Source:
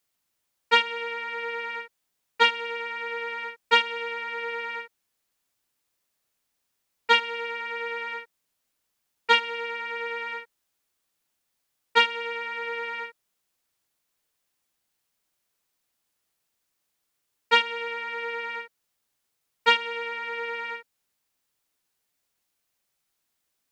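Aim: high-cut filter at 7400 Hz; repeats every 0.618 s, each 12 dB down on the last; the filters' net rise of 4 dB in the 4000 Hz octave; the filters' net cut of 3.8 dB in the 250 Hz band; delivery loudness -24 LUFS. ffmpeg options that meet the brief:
-af "lowpass=7.4k,equalizer=f=250:t=o:g=-4,equalizer=f=4k:t=o:g=6,aecho=1:1:618|1236|1854:0.251|0.0628|0.0157,volume=1dB"

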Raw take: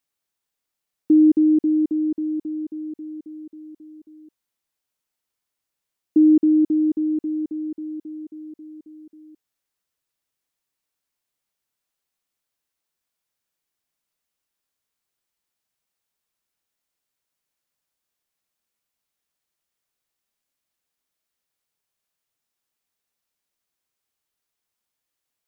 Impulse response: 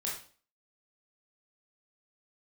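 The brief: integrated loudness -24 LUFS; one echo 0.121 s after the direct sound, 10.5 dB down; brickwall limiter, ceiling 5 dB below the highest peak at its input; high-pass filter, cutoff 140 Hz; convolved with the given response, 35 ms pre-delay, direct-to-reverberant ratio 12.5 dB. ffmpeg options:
-filter_complex "[0:a]highpass=140,alimiter=limit=-14.5dB:level=0:latency=1,aecho=1:1:121:0.299,asplit=2[a][b];[1:a]atrim=start_sample=2205,adelay=35[c];[b][c]afir=irnorm=-1:irlink=0,volume=-15dB[d];[a][d]amix=inputs=2:normalize=0"

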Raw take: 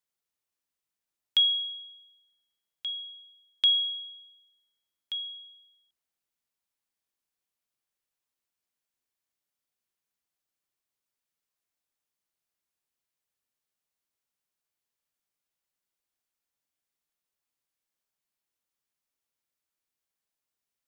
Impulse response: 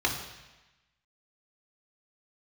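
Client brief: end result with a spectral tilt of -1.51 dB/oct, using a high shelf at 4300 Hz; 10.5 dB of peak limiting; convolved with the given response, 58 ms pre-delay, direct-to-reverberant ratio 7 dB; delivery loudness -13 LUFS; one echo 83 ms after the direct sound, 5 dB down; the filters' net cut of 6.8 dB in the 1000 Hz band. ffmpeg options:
-filter_complex "[0:a]equalizer=f=1k:t=o:g=-8.5,highshelf=f=4.3k:g=-8.5,alimiter=level_in=4.5dB:limit=-24dB:level=0:latency=1,volume=-4.5dB,aecho=1:1:83:0.562,asplit=2[a][b];[1:a]atrim=start_sample=2205,adelay=58[c];[b][c]afir=irnorm=-1:irlink=0,volume=-18dB[d];[a][d]amix=inputs=2:normalize=0,volume=19dB"

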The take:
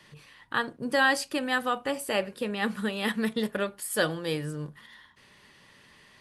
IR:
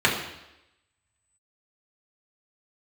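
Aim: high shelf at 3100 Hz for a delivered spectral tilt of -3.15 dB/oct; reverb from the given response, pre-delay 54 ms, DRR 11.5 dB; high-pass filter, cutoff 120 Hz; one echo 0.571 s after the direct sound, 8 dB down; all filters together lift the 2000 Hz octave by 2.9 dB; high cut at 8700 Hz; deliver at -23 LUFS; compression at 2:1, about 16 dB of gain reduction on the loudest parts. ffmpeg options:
-filter_complex "[0:a]highpass=120,lowpass=8.7k,equalizer=f=2k:t=o:g=6,highshelf=f=3.1k:g=-8,acompressor=threshold=-47dB:ratio=2,aecho=1:1:571:0.398,asplit=2[a][b];[1:a]atrim=start_sample=2205,adelay=54[c];[b][c]afir=irnorm=-1:irlink=0,volume=-30dB[d];[a][d]amix=inputs=2:normalize=0,volume=17.5dB"

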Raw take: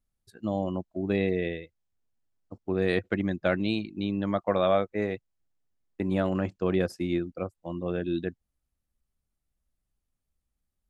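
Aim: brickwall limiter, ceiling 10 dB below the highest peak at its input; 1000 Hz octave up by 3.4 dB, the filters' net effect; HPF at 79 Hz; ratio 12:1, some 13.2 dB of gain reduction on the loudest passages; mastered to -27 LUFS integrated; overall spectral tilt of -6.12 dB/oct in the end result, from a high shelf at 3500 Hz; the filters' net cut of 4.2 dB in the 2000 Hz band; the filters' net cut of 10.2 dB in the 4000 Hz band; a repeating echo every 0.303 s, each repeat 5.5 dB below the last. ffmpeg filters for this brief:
-af "highpass=79,equalizer=f=1k:t=o:g=7,equalizer=f=2k:t=o:g=-4.5,highshelf=f=3.5k:g=-7,equalizer=f=4k:t=o:g=-7,acompressor=threshold=-31dB:ratio=12,alimiter=level_in=3dB:limit=-24dB:level=0:latency=1,volume=-3dB,aecho=1:1:303|606|909|1212|1515|1818|2121:0.531|0.281|0.149|0.079|0.0419|0.0222|0.0118,volume=11.5dB"

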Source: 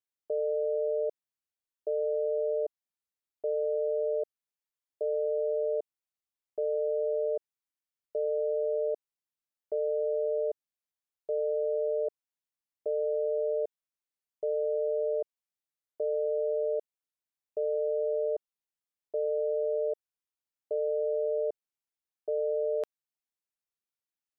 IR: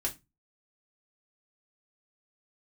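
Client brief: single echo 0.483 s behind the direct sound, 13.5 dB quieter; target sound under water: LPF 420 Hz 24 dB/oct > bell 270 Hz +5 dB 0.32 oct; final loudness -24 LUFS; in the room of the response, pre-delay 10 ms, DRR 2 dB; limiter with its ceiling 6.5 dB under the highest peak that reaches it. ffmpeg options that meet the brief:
-filter_complex "[0:a]alimiter=level_in=5.5dB:limit=-24dB:level=0:latency=1,volume=-5.5dB,aecho=1:1:483:0.211,asplit=2[a][b];[1:a]atrim=start_sample=2205,adelay=10[c];[b][c]afir=irnorm=-1:irlink=0,volume=-5dB[d];[a][d]amix=inputs=2:normalize=0,lowpass=f=420:w=0.5412,lowpass=f=420:w=1.3066,equalizer=f=270:t=o:w=0.32:g=5,volume=26dB"

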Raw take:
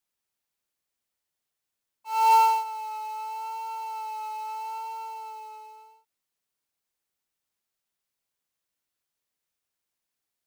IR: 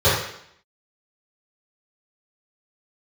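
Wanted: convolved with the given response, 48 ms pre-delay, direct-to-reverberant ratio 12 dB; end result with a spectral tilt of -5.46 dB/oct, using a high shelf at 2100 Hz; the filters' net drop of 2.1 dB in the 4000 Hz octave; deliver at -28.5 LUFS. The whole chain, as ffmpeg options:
-filter_complex "[0:a]highshelf=f=2.1k:g=3.5,equalizer=f=4k:t=o:g=-6,asplit=2[a][b];[1:a]atrim=start_sample=2205,adelay=48[c];[b][c]afir=irnorm=-1:irlink=0,volume=-34.5dB[d];[a][d]amix=inputs=2:normalize=0,volume=-2.5dB"

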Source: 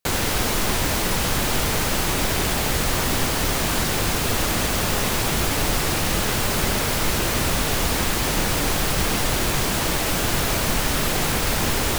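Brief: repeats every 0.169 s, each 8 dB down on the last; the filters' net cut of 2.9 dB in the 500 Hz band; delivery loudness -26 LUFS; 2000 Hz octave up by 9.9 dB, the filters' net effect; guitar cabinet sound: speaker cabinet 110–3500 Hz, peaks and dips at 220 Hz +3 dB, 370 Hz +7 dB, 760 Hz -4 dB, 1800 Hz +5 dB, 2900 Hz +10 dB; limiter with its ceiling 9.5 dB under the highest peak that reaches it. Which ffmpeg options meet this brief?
-af "equalizer=f=500:t=o:g=-8,equalizer=f=2k:t=o:g=7.5,alimiter=limit=-16dB:level=0:latency=1,highpass=110,equalizer=f=220:t=q:w=4:g=3,equalizer=f=370:t=q:w=4:g=7,equalizer=f=760:t=q:w=4:g=-4,equalizer=f=1.8k:t=q:w=4:g=5,equalizer=f=2.9k:t=q:w=4:g=10,lowpass=f=3.5k:w=0.5412,lowpass=f=3.5k:w=1.3066,aecho=1:1:169|338|507|676|845:0.398|0.159|0.0637|0.0255|0.0102,volume=-4.5dB"

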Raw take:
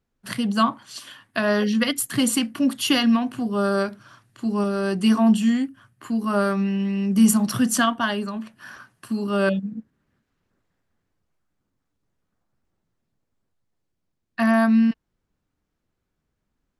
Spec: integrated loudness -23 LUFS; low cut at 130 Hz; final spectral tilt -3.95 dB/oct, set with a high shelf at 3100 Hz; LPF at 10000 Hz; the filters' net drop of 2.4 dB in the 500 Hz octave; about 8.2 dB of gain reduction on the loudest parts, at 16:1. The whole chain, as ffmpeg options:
-af "highpass=130,lowpass=10k,equalizer=f=500:t=o:g=-3.5,highshelf=f=3.1k:g=4,acompressor=threshold=-20dB:ratio=16,volume=3dB"

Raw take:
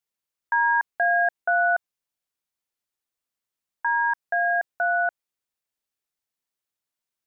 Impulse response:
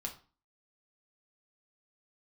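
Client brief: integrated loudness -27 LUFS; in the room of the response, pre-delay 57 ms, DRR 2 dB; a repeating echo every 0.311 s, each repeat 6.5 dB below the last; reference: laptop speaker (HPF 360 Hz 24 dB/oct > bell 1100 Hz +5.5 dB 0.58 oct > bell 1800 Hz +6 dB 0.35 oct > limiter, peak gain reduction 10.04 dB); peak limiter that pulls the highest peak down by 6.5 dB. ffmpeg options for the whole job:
-filter_complex "[0:a]alimiter=limit=-21dB:level=0:latency=1,aecho=1:1:311|622|933|1244|1555|1866:0.473|0.222|0.105|0.0491|0.0231|0.0109,asplit=2[a][b];[1:a]atrim=start_sample=2205,adelay=57[c];[b][c]afir=irnorm=-1:irlink=0,volume=-1.5dB[d];[a][d]amix=inputs=2:normalize=0,highpass=f=360:w=0.5412,highpass=f=360:w=1.3066,equalizer=f=1.1k:t=o:w=0.58:g=5.5,equalizer=f=1.8k:t=o:w=0.35:g=6,alimiter=limit=-21dB:level=0:latency=1"

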